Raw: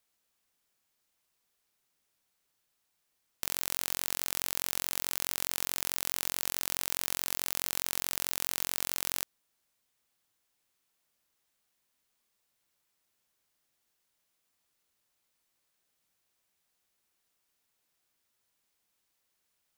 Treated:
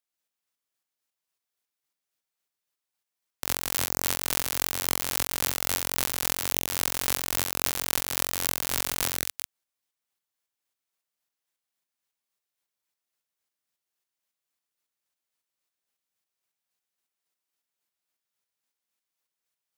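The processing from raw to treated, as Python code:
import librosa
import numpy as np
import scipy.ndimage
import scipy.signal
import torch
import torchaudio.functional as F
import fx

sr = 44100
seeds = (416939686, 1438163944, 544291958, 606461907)

p1 = fx.reverse_delay(x, sr, ms=139, wet_db=-5)
p2 = scipy.signal.sosfilt(scipy.signal.butter(2, 66.0, 'highpass', fs=sr, output='sos'), p1)
p3 = fx.low_shelf(p2, sr, hz=400.0, db=-4.5)
p4 = fx.leveller(p3, sr, passes=5)
p5 = fx.volume_shaper(p4, sr, bpm=109, per_beat=2, depth_db=-12, release_ms=191.0, shape='slow start')
p6 = p4 + F.gain(torch.from_numpy(p5), 2.0).numpy()
y = F.gain(torch.from_numpy(p6), -3.5).numpy()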